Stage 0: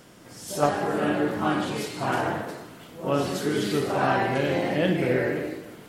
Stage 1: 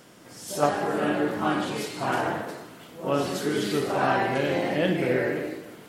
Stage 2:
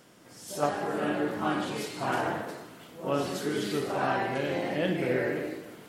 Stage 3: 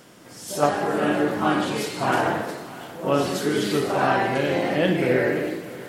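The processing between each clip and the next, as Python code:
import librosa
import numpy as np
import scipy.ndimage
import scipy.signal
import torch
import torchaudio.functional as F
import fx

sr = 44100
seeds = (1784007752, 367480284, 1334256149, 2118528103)

y1 = fx.low_shelf(x, sr, hz=93.0, db=-9.5)
y2 = fx.rider(y1, sr, range_db=4, speed_s=2.0)
y2 = y2 * 10.0 ** (-4.0 / 20.0)
y3 = y2 + 10.0 ** (-19.0 / 20.0) * np.pad(y2, (int(636 * sr / 1000.0), 0))[:len(y2)]
y3 = y3 * 10.0 ** (7.5 / 20.0)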